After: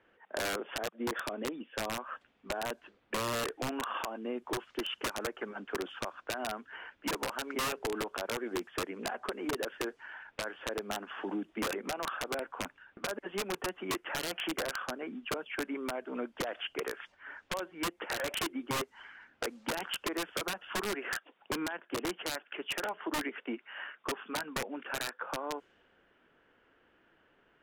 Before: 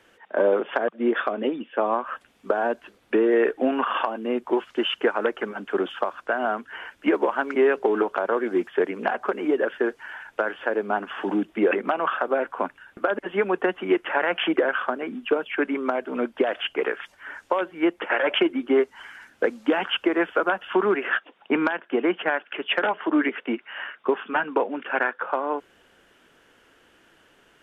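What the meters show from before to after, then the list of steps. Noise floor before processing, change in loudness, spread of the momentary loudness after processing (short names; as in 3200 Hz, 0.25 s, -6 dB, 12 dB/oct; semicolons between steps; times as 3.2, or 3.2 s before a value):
-60 dBFS, -12.0 dB, 6 LU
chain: wrapped overs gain 14.5 dB; compressor 2.5:1, threshold -25 dBFS, peak gain reduction 5.5 dB; low-pass opened by the level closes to 2300 Hz, open at -24 dBFS; gain -8.5 dB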